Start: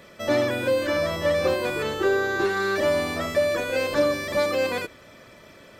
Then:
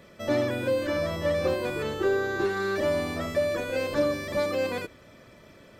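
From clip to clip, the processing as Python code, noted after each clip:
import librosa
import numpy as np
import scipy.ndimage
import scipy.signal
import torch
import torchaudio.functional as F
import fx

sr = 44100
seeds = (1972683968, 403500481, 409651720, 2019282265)

y = fx.low_shelf(x, sr, hz=420.0, db=6.5)
y = y * 10.0 ** (-6.0 / 20.0)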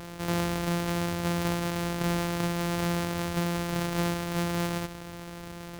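y = np.r_[np.sort(x[:len(x) // 256 * 256].reshape(-1, 256), axis=1).ravel(), x[len(x) // 256 * 256:]]
y = fx.env_flatten(y, sr, amount_pct=50)
y = y * 10.0 ** (-5.0 / 20.0)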